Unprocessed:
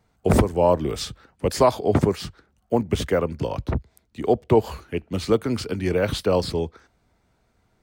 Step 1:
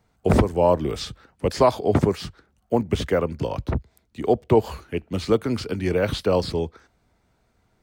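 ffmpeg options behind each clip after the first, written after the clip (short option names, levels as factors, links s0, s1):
-filter_complex "[0:a]acrossover=split=6100[s0][s1];[s1]acompressor=threshold=0.00631:ratio=4:attack=1:release=60[s2];[s0][s2]amix=inputs=2:normalize=0"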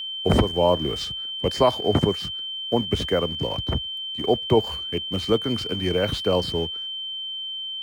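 -filter_complex "[0:a]asplit=2[s0][s1];[s1]aeval=exprs='val(0)*gte(abs(val(0)),0.0355)':c=same,volume=0.355[s2];[s0][s2]amix=inputs=2:normalize=0,aeval=exprs='val(0)+0.0562*sin(2*PI*3100*n/s)':c=same,volume=0.631"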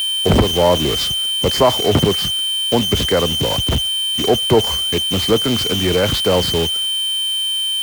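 -af "aeval=exprs='val(0)+0.5*0.0891*sgn(val(0))':c=same,volume=1.5"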